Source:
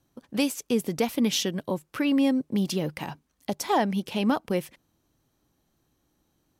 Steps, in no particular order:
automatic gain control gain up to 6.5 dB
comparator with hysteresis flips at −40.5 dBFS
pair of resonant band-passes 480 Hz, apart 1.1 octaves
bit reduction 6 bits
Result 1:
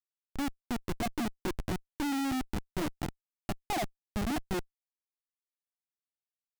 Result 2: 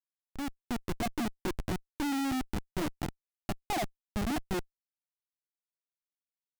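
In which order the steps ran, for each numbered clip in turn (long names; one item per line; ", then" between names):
pair of resonant band-passes, then bit reduction, then automatic gain control, then comparator with hysteresis
pair of resonant band-passes, then bit reduction, then comparator with hysteresis, then automatic gain control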